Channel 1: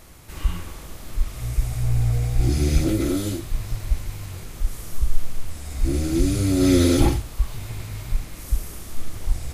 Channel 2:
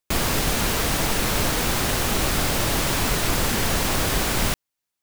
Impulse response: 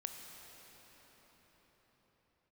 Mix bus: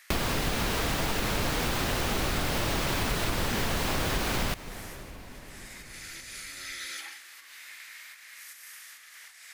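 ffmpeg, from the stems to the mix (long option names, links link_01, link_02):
-filter_complex "[0:a]equalizer=frequency=5100:width=1.5:gain=2.5,acompressor=threshold=-20dB:ratio=4,highpass=frequency=1800:width_type=q:width=3.8,volume=-9dB,asplit=2[link_01][link_02];[link_02]volume=-9dB[link_03];[1:a]acrossover=split=5500[link_04][link_05];[link_05]acompressor=threshold=-42dB:ratio=4:attack=1:release=60[link_06];[link_04][link_06]amix=inputs=2:normalize=0,acrusher=bits=4:mix=0:aa=0.000001,volume=-0.5dB,asplit=2[link_07][link_08];[link_08]volume=-10.5dB[link_09];[2:a]atrim=start_sample=2205[link_10];[link_03][link_09]amix=inputs=2:normalize=0[link_11];[link_11][link_10]afir=irnorm=-1:irlink=0[link_12];[link_01][link_07][link_12]amix=inputs=3:normalize=0,acompressor=threshold=-25dB:ratio=6"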